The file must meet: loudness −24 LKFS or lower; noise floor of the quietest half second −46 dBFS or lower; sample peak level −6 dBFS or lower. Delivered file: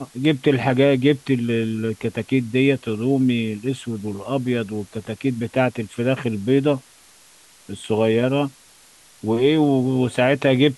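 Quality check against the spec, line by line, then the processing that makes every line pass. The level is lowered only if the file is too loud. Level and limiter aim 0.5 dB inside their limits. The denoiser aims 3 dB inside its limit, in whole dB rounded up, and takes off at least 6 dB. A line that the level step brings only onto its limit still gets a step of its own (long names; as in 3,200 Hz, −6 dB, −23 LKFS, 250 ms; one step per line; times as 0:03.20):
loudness −21.0 LKFS: out of spec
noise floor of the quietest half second −51 dBFS: in spec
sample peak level −4.5 dBFS: out of spec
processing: level −3.5 dB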